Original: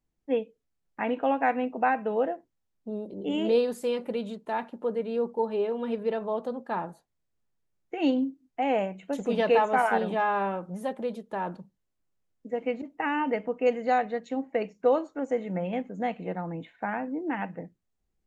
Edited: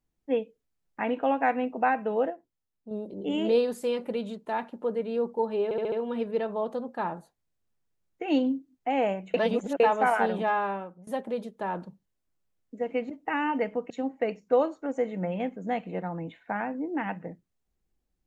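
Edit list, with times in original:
0:02.30–0:02.91: clip gain −6 dB
0:05.64: stutter 0.07 s, 5 plays
0:09.06–0:09.52: reverse
0:10.24–0:10.79: fade out, to −20 dB
0:13.62–0:14.23: remove

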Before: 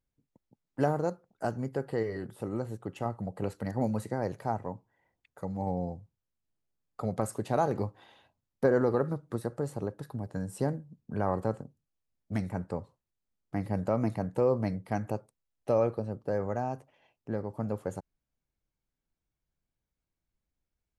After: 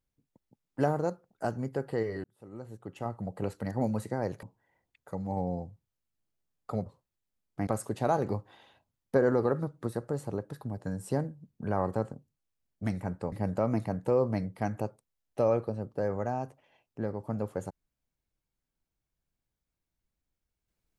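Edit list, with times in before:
0:02.24–0:03.30: fade in
0:04.43–0:04.73: remove
0:12.81–0:13.62: move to 0:07.16

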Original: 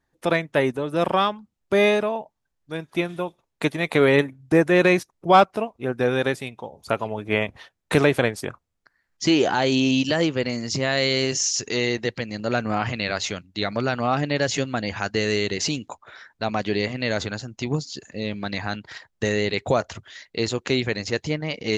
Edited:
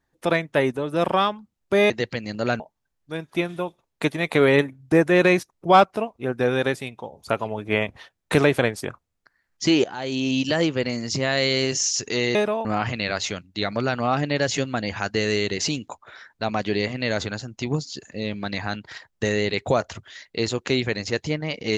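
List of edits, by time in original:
0:01.90–0:02.20: swap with 0:11.95–0:12.65
0:09.44–0:10.15: fade in, from −17.5 dB

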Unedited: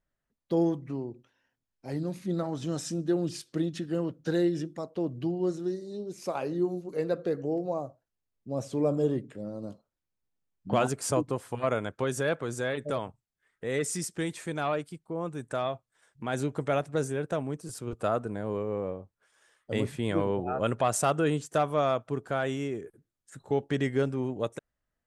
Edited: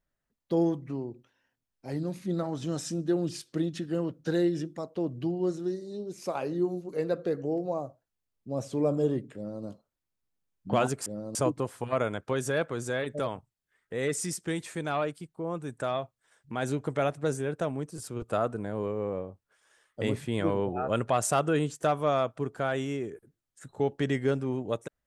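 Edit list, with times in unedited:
0:09.35–0:09.64: duplicate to 0:11.06

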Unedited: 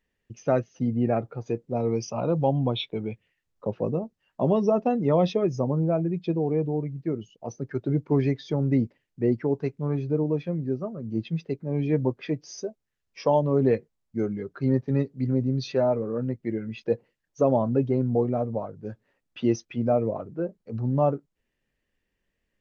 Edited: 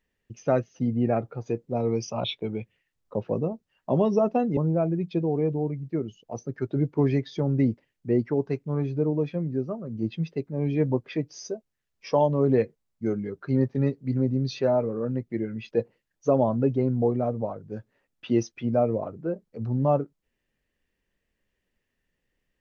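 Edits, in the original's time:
0:02.24–0:02.75: remove
0:05.08–0:05.70: remove

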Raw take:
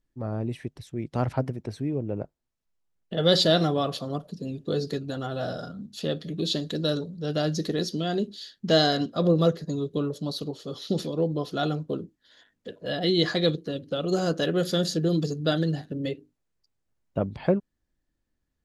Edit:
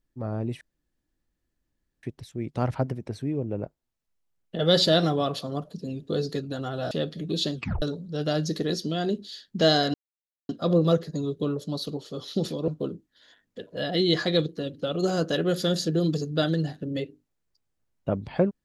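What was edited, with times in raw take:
0:00.61: splice in room tone 1.42 s
0:05.49–0:06.00: remove
0:06.63: tape stop 0.28 s
0:09.03: splice in silence 0.55 s
0:11.22–0:11.77: remove

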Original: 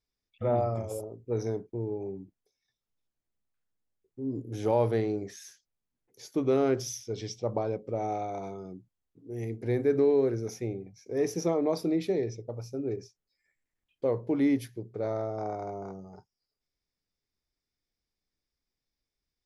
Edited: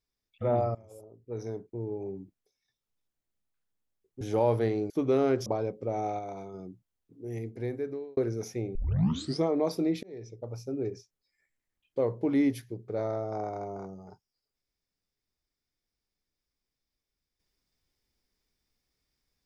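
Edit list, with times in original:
0:00.75–0:02.15: fade in, from −22.5 dB
0:04.21–0:04.53: remove
0:05.22–0:06.29: remove
0:06.85–0:07.52: remove
0:08.25–0:08.60: clip gain −3 dB
0:09.30–0:10.23: fade out
0:10.81: tape start 0.69 s
0:12.09–0:12.60: fade in

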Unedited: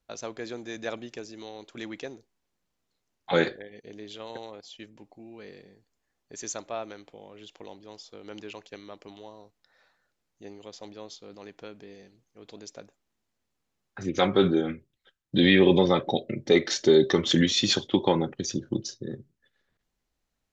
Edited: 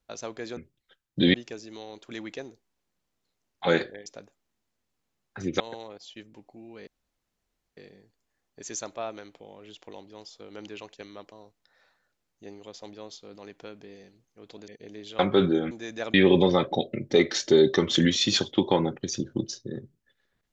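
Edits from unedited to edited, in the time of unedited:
0:00.57–0:01.00: swap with 0:14.73–0:15.50
0:03.72–0:04.23: swap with 0:12.67–0:14.21
0:05.50: splice in room tone 0.90 s
0:09.05–0:09.31: remove

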